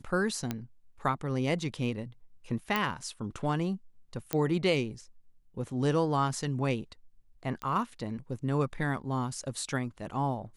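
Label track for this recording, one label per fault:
0.510000	0.510000	click −17 dBFS
2.760000	2.760000	click −14 dBFS
4.330000	4.330000	click −12 dBFS
7.620000	7.620000	click −23 dBFS

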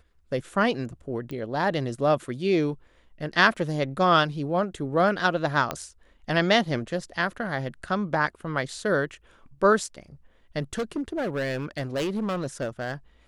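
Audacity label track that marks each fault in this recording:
1.310000	1.310000	click −24 dBFS
5.710000	5.710000	click −13 dBFS
10.730000	12.940000	clipping −24 dBFS

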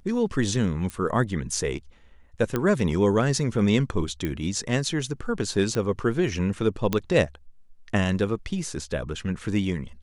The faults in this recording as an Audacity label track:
0.900000	0.900000	click −19 dBFS
2.560000	2.560000	click −12 dBFS
4.250000	4.250000	click −16 dBFS
5.750000	5.750000	click −16 dBFS
6.930000	6.930000	click −9 dBFS

